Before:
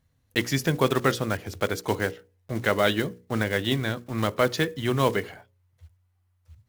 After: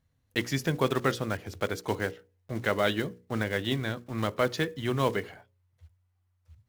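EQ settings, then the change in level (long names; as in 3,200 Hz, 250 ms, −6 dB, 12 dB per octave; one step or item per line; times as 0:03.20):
high-shelf EQ 7,100 Hz −4 dB
−4.0 dB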